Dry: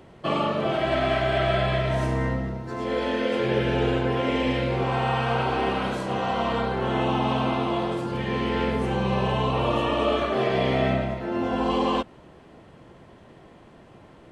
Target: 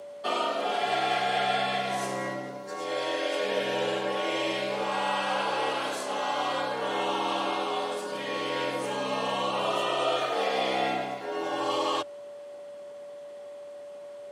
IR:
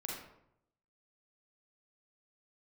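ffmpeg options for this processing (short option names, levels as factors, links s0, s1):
-af "bass=f=250:g=-13,treble=f=4000:g=12,aeval=exprs='val(0)+0.0141*sin(2*PI*510*n/s)':c=same,afreqshift=68,volume=0.708"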